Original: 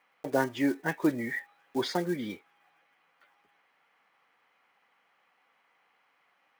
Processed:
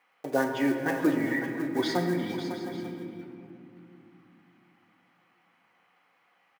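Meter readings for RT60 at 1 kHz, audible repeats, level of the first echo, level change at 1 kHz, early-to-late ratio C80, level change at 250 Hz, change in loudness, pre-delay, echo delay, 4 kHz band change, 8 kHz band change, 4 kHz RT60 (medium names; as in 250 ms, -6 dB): 2.2 s, 4, -17.5 dB, +2.0 dB, 4.0 dB, +3.5 dB, +2.0 dB, 3 ms, 435 ms, +2.0 dB, +1.5 dB, 1.3 s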